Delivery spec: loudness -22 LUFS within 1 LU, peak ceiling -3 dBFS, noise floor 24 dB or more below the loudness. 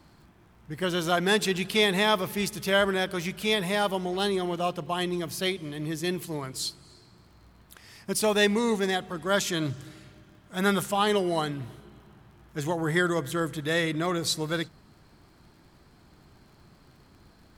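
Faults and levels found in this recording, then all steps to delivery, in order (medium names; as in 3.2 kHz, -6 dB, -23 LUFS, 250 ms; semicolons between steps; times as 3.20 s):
tick rate 40 per s; loudness -27.0 LUFS; peak level -9.5 dBFS; loudness target -22.0 LUFS
-> de-click; trim +5 dB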